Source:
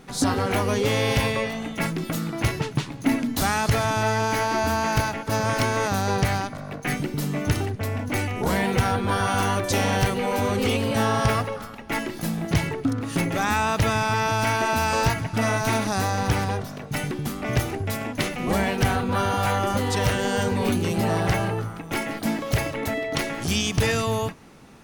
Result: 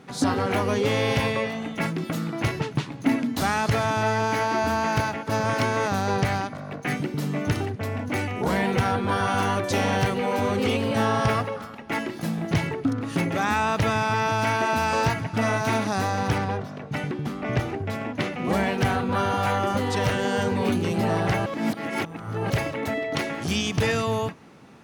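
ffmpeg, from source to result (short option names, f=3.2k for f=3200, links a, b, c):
-filter_complex "[0:a]asettb=1/sr,asplit=3[a][b][c];[a]atrim=end=16.384[d];[b]atrim=start=16.38:end=18.45,asetpts=PTS-STARTPTS,afade=t=in:d=0.004:c=qsin,afade=t=out:st=2.066:d=0.004:c=qsin,lowpass=f=3.7k:p=1[e];[c]atrim=start=18.446[f];[d][e]acrossfade=d=0.004:c1=hsin:c2=qsin[g];[g][f]acrossfade=d=0.004:c1=qsin:c2=hsin,asplit=3[h][i][j];[h]atrim=end=21.462[k];[i]atrim=start=21.458:end=22.502,asetpts=PTS-STARTPTS,areverse[l];[j]atrim=start=22.498[m];[k][l]acrossfade=d=0.004:c1=hsin:c2=hsin[n];[n][m]acrossfade=d=0.004:c1=hsin:c2=hsin,highpass=95,highshelf=f=6.3k:g=-10"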